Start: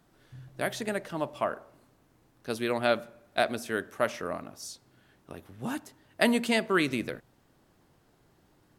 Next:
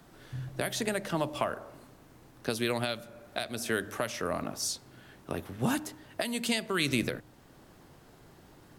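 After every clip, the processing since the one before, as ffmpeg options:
ffmpeg -i in.wav -filter_complex "[0:a]acrossover=split=130|3000[link_01][link_02][link_03];[link_02]acompressor=threshold=-34dB:ratio=10[link_04];[link_01][link_04][link_03]amix=inputs=3:normalize=0,bandreject=frequency=101.9:width_type=h:width=4,bandreject=frequency=203.8:width_type=h:width=4,bandreject=frequency=305.7:width_type=h:width=4,alimiter=level_in=0.5dB:limit=-24dB:level=0:latency=1:release=477,volume=-0.5dB,volume=9dB" out.wav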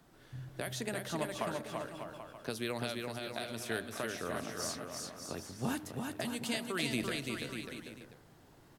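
ffmpeg -i in.wav -af "aecho=1:1:340|595|786.2|929.7|1037:0.631|0.398|0.251|0.158|0.1,volume=-7dB" out.wav

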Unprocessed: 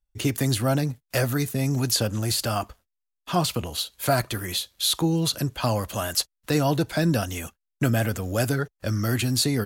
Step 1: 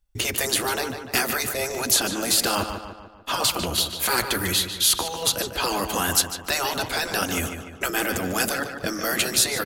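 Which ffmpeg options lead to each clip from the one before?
ffmpeg -i in.wav -filter_complex "[0:a]afftfilt=real='re*lt(hypot(re,im),0.2)':imag='im*lt(hypot(re,im),0.2)':win_size=1024:overlap=0.75,asplit=2[link_01][link_02];[link_02]adelay=148,lowpass=frequency=3700:poles=1,volume=-7.5dB,asplit=2[link_03][link_04];[link_04]adelay=148,lowpass=frequency=3700:poles=1,volume=0.52,asplit=2[link_05][link_06];[link_06]adelay=148,lowpass=frequency=3700:poles=1,volume=0.52,asplit=2[link_07][link_08];[link_08]adelay=148,lowpass=frequency=3700:poles=1,volume=0.52,asplit=2[link_09][link_10];[link_10]adelay=148,lowpass=frequency=3700:poles=1,volume=0.52,asplit=2[link_11][link_12];[link_12]adelay=148,lowpass=frequency=3700:poles=1,volume=0.52[link_13];[link_03][link_05][link_07][link_09][link_11][link_13]amix=inputs=6:normalize=0[link_14];[link_01][link_14]amix=inputs=2:normalize=0,volume=7dB" out.wav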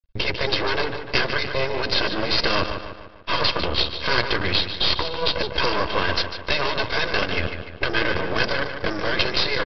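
ffmpeg -i in.wav -af "equalizer=frequency=290:width_type=o:width=0.32:gain=11,aecho=1:1:1.9:0.78,aresample=11025,aeval=exprs='max(val(0),0)':channel_layout=same,aresample=44100,volume=5dB" out.wav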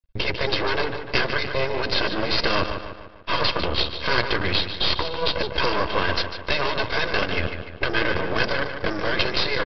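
ffmpeg -i in.wav -af "highshelf=frequency=5200:gain=-5.5" out.wav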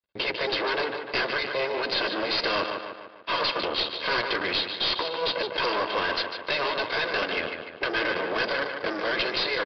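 ffmpeg -i in.wav -af "highpass=310,aresample=11025,asoftclip=type=tanh:threshold=-19dB,aresample=44100" out.wav

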